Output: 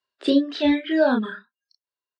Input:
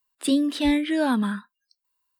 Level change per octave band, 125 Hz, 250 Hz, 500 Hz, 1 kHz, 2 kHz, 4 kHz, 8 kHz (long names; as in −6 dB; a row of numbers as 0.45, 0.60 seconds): can't be measured, +0.5 dB, +7.5 dB, +0.5 dB, +2.5 dB, +1.0 dB, below −15 dB